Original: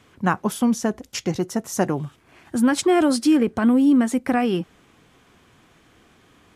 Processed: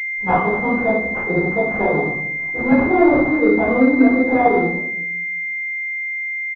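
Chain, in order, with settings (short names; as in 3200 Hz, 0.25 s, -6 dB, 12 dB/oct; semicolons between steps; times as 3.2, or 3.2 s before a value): gate -51 dBFS, range -31 dB; bell 230 Hz -11 dB 0.74 oct; chorus voices 6, 0.56 Hz, delay 15 ms, depth 4.7 ms; low shelf 88 Hz -8.5 dB; comb 4.2 ms, depth 40%; on a send: frequency-shifting echo 88 ms, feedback 56%, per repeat +37 Hz, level -20 dB; on the sum: shoebox room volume 170 m³, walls mixed, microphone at 4.2 m; pulse-width modulation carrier 2100 Hz; gain -1 dB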